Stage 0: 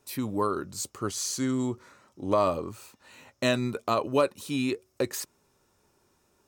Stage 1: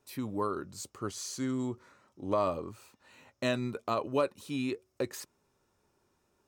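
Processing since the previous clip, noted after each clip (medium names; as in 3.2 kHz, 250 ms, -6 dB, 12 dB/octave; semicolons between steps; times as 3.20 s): treble shelf 4.9 kHz -5.5 dB; trim -5 dB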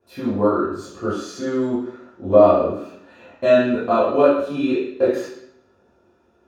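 reverberation RT60 0.70 s, pre-delay 6 ms, DRR -12.5 dB; trim -10 dB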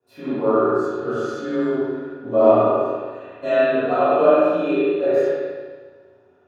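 spring tank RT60 1.5 s, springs 34/46 ms, chirp 65 ms, DRR -9 dB; frequency shift +26 Hz; trim -8.5 dB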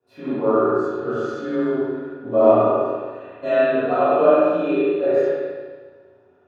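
low-pass 3.7 kHz 6 dB/octave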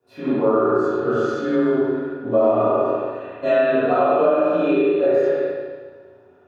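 compression 6:1, threshold -18 dBFS, peak gain reduction 10 dB; trim +4.5 dB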